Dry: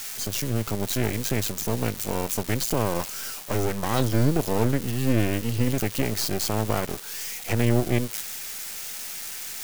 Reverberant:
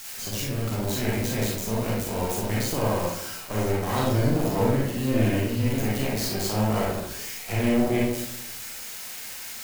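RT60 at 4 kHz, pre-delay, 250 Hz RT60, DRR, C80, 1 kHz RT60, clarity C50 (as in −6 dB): 0.45 s, 33 ms, 0.85 s, −5.5 dB, 4.0 dB, 0.80 s, −1.0 dB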